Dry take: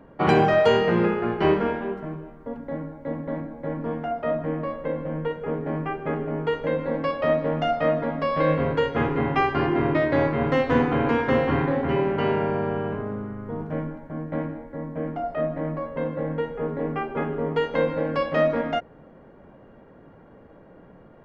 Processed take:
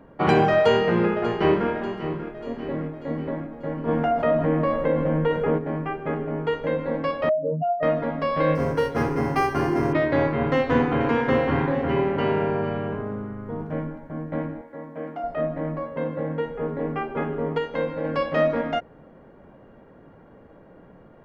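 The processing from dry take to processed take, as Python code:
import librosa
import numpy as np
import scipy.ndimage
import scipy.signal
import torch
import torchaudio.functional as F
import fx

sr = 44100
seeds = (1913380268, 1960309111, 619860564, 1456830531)

y = fx.echo_throw(x, sr, start_s=0.57, length_s=1.12, ms=590, feedback_pct=55, wet_db=-12.5)
y = fx.doubler(y, sr, ms=26.0, db=-4.5, at=(2.25, 3.3))
y = fx.env_flatten(y, sr, amount_pct=50, at=(3.87, 5.57), fade=0.02)
y = fx.spec_expand(y, sr, power=3.1, at=(7.29, 7.83))
y = fx.resample_linear(y, sr, factor=6, at=(8.55, 9.93))
y = fx.echo_single(y, sr, ms=456, db=-13.5, at=(10.55, 12.88))
y = fx.highpass(y, sr, hz=440.0, slope=6, at=(14.61, 15.24))
y = fx.highpass(y, sr, hz=66.0, slope=12, at=(15.83, 16.46))
y = fx.edit(y, sr, fx.clip_gain(start_s=17.58, length_s=0.46, db=-3.5), tone=tone)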